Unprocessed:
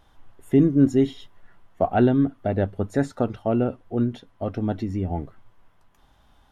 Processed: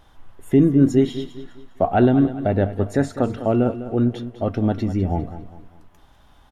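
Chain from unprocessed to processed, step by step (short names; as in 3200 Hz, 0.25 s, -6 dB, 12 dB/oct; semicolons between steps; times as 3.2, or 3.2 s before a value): de-hum 231.1 Hz, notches 15; in parallel at -2 dB: limiter -17.5 dBFS, peak gain reduction 10 dB; on the sum: feedback echo 0.202 s, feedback 39%, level -13 dB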